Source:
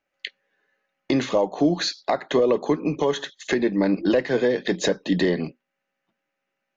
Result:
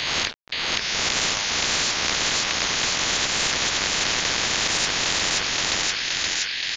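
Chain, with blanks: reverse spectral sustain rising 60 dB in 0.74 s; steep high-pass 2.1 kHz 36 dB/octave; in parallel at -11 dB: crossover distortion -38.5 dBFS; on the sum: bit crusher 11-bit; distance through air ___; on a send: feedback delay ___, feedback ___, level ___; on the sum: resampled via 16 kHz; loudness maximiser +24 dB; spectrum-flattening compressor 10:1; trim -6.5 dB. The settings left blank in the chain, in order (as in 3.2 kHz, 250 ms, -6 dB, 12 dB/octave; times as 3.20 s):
210 m, 523 ms, 44%, -7 dB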